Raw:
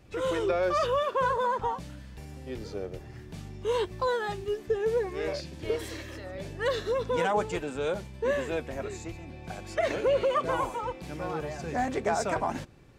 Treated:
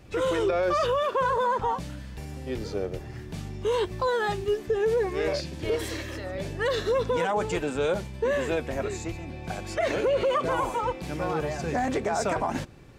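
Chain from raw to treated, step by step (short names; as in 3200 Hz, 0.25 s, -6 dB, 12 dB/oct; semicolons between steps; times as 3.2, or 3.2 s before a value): limiter -23 dBFS, peak gain reduction 8.5 dB; gain +5.5 dB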